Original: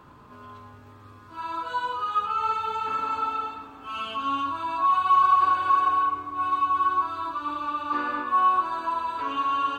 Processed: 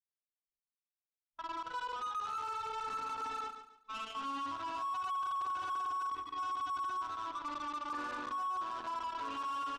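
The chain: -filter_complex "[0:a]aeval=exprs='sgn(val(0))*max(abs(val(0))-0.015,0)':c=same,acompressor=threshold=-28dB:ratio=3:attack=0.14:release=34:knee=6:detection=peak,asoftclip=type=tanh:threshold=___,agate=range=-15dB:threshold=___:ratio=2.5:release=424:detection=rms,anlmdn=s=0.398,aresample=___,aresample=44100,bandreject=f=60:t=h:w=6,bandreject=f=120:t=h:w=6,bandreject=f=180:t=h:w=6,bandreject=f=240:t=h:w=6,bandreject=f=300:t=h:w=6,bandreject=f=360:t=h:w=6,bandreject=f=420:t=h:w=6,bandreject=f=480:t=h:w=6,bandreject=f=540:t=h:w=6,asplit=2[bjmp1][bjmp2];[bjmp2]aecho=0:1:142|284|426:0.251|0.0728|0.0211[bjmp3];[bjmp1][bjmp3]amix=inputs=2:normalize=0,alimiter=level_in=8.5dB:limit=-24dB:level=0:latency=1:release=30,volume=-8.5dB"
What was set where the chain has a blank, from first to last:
-26dB, -39dB, 32000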